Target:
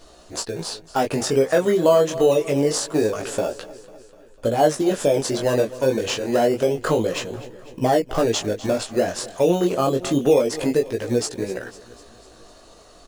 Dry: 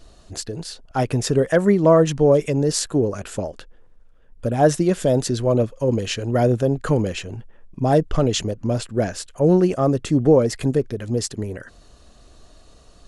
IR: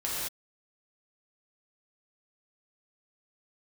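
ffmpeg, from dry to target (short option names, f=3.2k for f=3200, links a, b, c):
-filter_complex "[0:a]asplit=2[a][b];[b]acrusher=samples=17:mix=1:aa=0.000001:lfo=1:lforange=10.2:lforate=0.38,volume=-8.5dB[c];[a][c]amix=inputs=2:normalize=0,bass=f=250:g=-14,treble=f=4k:g=9,asplit=2[d][e];[e]aecho=0:1:249|498|747|996|1245:0.0944|0.0557|0.0329|0.0194|0.0114[f];[d][f]amix=inputs=2:normalize=0,flanger=delay=16:depth=7.2:speed=0.26,acompressor=threshold=-27dB:ratio=2,highshelf=f=3.8k:g=-11.5,volume=8.5dB"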